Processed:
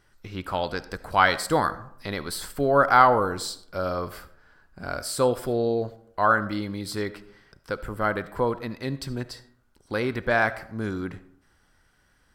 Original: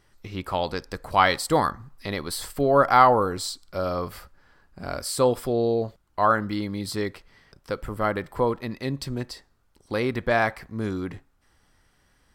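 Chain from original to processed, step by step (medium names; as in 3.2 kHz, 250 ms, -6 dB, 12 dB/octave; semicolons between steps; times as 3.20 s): peaking EQ 1.5 kHz +8 dB 0.21 oct; algorithmic reverb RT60 0.69 s, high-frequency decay 0.45×, pre-delay 30 ms, DRR 15.5 dB; trim -1.5 dB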